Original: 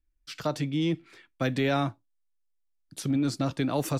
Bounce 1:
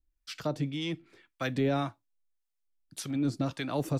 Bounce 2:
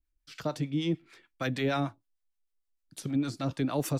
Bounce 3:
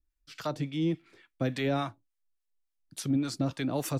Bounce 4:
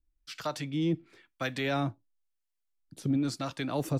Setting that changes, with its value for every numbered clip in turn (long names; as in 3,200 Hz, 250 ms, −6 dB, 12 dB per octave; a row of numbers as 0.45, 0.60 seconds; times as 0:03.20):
two-band tremolo in antiphase, speed: 1.8, 6.6, 3.5, 1 Hertz